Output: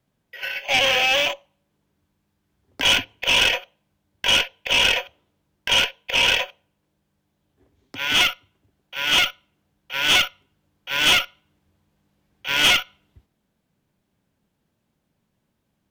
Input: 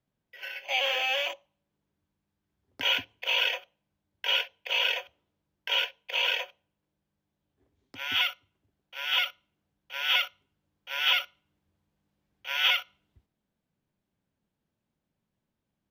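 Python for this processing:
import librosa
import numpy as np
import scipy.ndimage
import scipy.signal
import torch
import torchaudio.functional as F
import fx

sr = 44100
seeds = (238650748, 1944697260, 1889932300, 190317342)

y = fx.cheby_harmonics(x, sr, harmonics=(4, 5), levels_db=(-13, -16), full_scale_db=-12.0)
y = fx.wow_flutter(y, sr, seeds[0], rate_hz=2.1, depth_cents=19.0)
y = y * 10.0 ** (5.0 / 20.0)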